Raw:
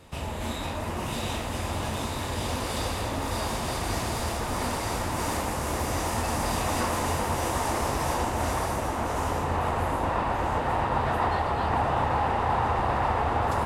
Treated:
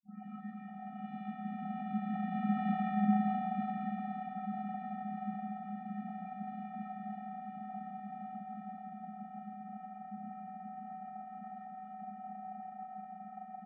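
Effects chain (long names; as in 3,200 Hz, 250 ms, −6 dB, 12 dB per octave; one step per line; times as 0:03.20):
turntable start at the beginning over 1.02 s
source passing by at 0:02.80, 15 m/s, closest 5.5 metres
in parallel at +0.5 dB: downward compressor, threshold −47 dBFS, peak gain reduction 19.5 dB
on the sum: hard clipping −28 dBFS, distortion −13 dB
channel vocoder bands 32, square 272 Hz
on a send: repeating echo 168 ms, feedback 57%, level −7 dB
on the sum: single-sideband voice off tune −65 Hz 150–2,500 Hz
level +2 dB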